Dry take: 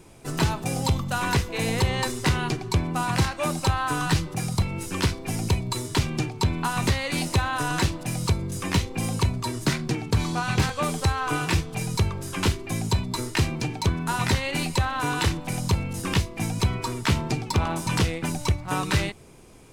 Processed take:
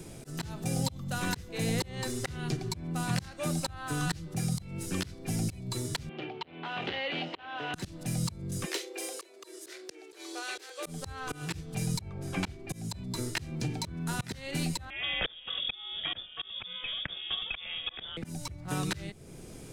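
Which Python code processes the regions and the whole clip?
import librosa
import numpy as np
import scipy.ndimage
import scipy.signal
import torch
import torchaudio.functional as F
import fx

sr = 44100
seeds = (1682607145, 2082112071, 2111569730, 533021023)

y = fx.chain(x, sr, fx.clip_hard(threshold_db=-24.5),
    fx.cabinet(low_hz=390.0, low_slope=12, high_hz=3200.0, hz=(400.0, 780.0, 3000.0), db=(4, 5, 10)), at=(6.09, 7.74))
y = fx.chain(y, sr, fx.cheby1_highpass(hz=340.0, order=6),
    fx.peak_eq(hz=960.0, db=-7.0, octaves=1.6), at=(8.65, 10.86))
y = fx.chain(y, sr, fx.high_shelf(hz=4100.0, db=-11.0),
    fx.small_body(hz=(750.0, 2300.0), ring_ms=20, db=9), at=(12.01, 12.68))
y = fx.chain(y, sr, fx.highpass(hz=68.0, slope=12),
    fx.freq_invert(carrier_hz=3500), at=(14.9, 18.17))
y = fx.graphic_eq_15(y, sr, hz=(160, 1000, 2500), db=(4, -9, -4))
y = fx.auto_swell(y, sr, attack_ms=409.0)
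y = fx.band_squash(y, sr, depth_pct=40)
y = y * librosa.db_to_amplitude(-2.0)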